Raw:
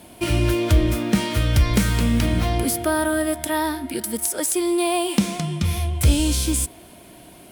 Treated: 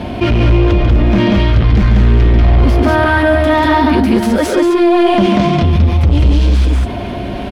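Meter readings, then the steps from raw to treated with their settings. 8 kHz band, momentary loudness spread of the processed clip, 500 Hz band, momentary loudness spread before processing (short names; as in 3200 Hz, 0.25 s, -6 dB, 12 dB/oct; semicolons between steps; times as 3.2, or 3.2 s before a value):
-10.5 dB, 3 LU, +11.5 dB, 5 LU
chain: low shelf 150 Hz +7 dB; vocal rider 0.5 s; notch comb 160 Hz; hard clip -18.5 dBFS, distortion -7 dB; air absorption 250 m; loudspeakers at several distances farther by 48 m -6 dB, 65 m -1 dB; fast leveller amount 50%; gain +6.5 dB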